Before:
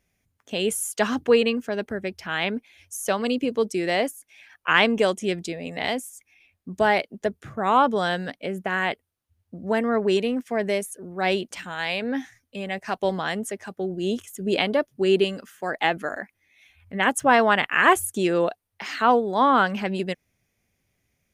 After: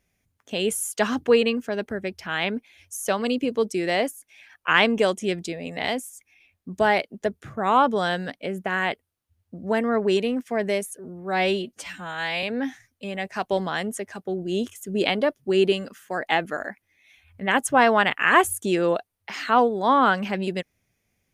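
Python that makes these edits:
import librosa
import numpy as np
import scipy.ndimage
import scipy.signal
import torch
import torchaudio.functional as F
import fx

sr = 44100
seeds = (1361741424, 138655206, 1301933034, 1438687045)

y = fx.edit(x, sr, fx.stretch_span(start_s=10.99, length_s=0.96, factor=1.5), tone=tone)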